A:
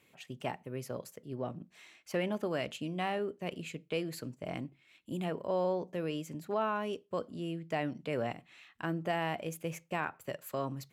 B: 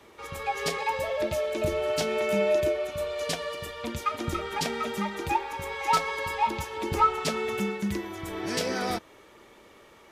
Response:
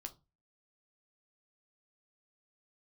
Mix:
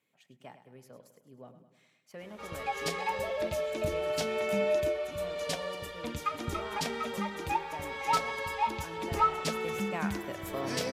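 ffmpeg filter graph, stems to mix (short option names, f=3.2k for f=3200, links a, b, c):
-filter_complex "[0:a]highpass=130,bandreject=f=2.7k:w=14,volume=-1.5dB,afade=t=in:st=9.3:d=0.6:silence=0.298538,asplit=2[a][b];[b]volume=-11.5dB[c];[1:a]adelay=2200,volume=-4dB[d];[c]aecho=0:1:104|208|312|416|520|624|728|832:1|0.54|0.292|0.157|0.085|0.0459|0.0248|0.0134[e];[a][d][e]amix=inputs=3:normalize=0,bandreject=f=360:w=12"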